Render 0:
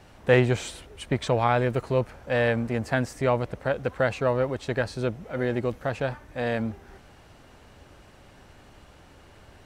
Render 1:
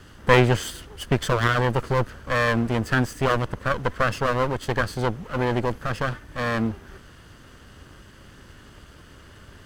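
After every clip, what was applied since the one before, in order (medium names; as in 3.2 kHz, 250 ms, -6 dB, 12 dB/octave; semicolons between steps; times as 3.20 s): comb filter that takes the minimum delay 0.63 ms; trim +5.5 dB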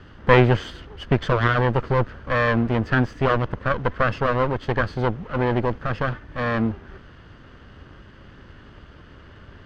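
distance through air 230 m; trim +2.5 dB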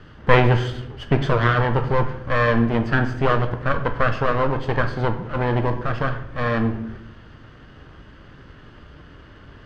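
simulated room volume 190 m³, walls mixed, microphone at 0.48 m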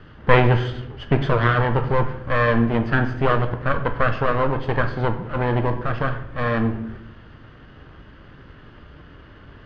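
low-pass 4.2 kHz 12 dB/octave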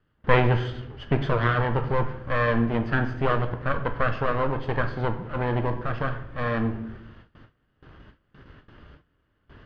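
gate with hold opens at -34 dBFS; trim -4.5 dB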